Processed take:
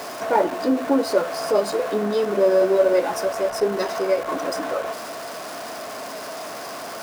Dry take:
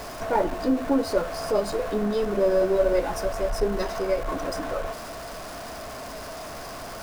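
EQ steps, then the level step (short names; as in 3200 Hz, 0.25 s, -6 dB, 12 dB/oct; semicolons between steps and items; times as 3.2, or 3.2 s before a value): HPF 240 Hz 12 dB/oct; +4.5 dB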